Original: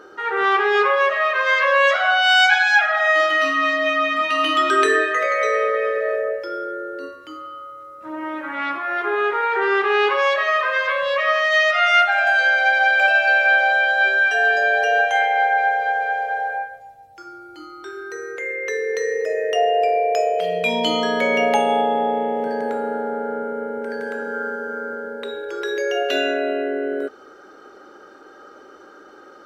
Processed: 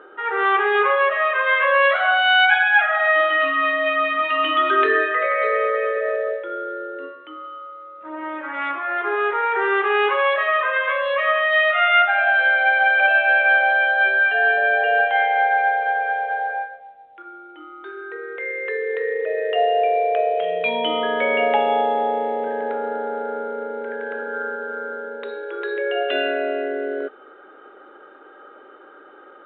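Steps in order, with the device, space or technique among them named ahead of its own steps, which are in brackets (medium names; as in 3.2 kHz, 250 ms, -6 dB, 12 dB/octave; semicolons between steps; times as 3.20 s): telephone (band-pass 330–3300 Hz; µ-law 64 kbps 8 kHz)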